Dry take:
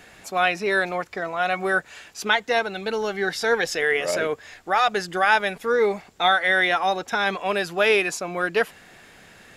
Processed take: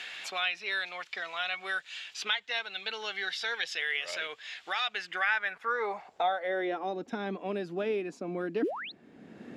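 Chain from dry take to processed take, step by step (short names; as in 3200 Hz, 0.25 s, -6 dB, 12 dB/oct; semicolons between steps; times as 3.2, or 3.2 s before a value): painted sound rise, 8.62–8.92, 270–4500 Hz -18 dBFS; band-pass sweep 3300 Hz -> 260 Hz, 4.85–7.02; three-band squash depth 70%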